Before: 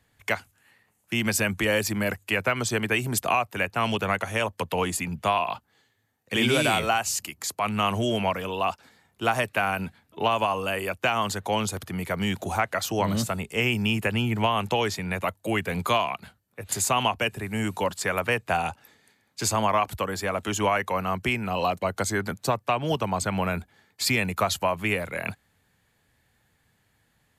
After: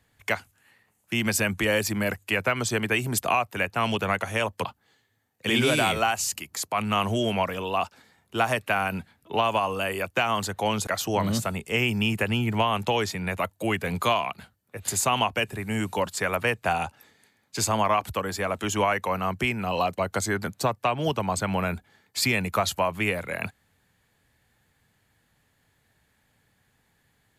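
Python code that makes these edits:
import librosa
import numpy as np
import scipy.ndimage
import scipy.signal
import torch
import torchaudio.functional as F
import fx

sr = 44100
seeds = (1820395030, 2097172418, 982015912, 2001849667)

y = fx.edit(x, sr, fx.cut(start_s=4.65, length_s=0.87),
    fx.cut(start_s=11.74, length_s=0.97), tone=tone)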